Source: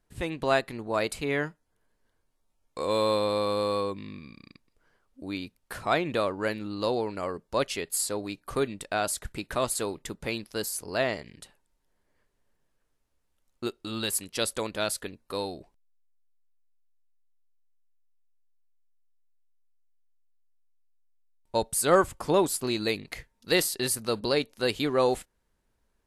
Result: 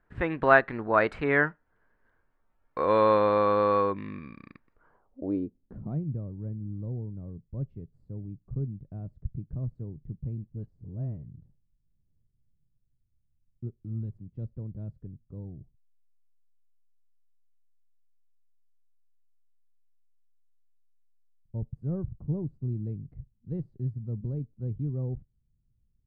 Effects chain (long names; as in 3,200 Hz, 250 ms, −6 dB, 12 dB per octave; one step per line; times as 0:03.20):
0:10.37–0:11.29: all-pass dispersion highs, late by 41 ms, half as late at 820 Hz
low-pass filter sweep 1,600 Hz → 130 Hz, 0:04.69–0:06.05
level +2.5 dB